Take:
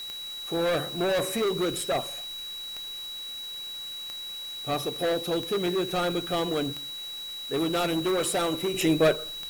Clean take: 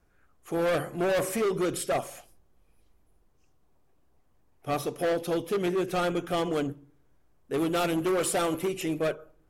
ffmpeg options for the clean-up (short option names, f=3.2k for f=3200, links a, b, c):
-af "adeclick=t=4,bandreject=f=3.9k:w=30,afwtdn=0.004,asetnsamples=n=441:p=0,asendcmd='8.74 volume volume -7dB',volume=0dB"